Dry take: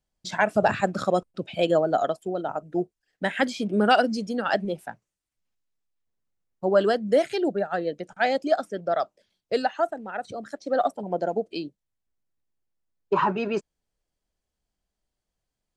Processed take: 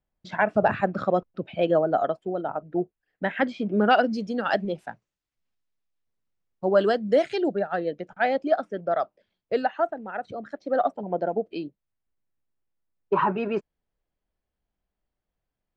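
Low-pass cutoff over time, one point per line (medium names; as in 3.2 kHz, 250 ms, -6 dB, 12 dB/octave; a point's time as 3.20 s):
3.69 s 2.3 kHz
4.45 s 5.1 kHz
7.43 s 5.1 kHz
8.17 s 2.6 kHz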